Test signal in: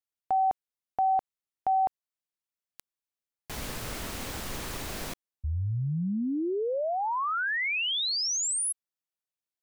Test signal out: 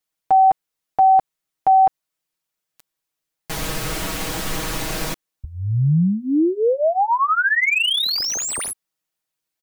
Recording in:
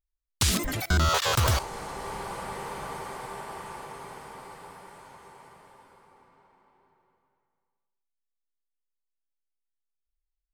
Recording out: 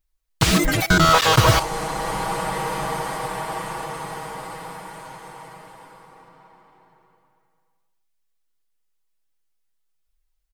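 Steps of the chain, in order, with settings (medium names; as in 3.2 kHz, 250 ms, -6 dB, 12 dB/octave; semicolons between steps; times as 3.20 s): comb 6.3 ms, depth 87%; slew-rate limiter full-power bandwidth 170 Hz; trim +8.5 dB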